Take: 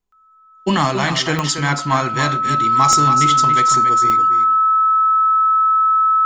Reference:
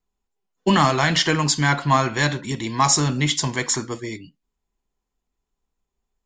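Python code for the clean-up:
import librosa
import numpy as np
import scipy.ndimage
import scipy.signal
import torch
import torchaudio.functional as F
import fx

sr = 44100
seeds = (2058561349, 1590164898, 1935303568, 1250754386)

y = fx.fix_declick_ar(x, sr, threshold=10.0)
y = fx.notch(y, sr, hz=1300.0, q=30.0)
y = fx.fix_echo_inverse(y, sr, delay_ms=279, level_db=-8.5)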